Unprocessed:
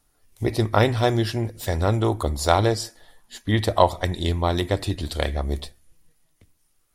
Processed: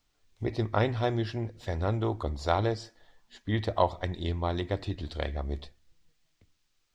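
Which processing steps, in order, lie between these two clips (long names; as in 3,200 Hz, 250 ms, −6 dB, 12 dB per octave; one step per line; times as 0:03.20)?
high-shelf EQ 6,600 Hz +5.5 dB
background noise violet −51 dBFS
high-frequency loss of the air 170 metres
level −7.5 dB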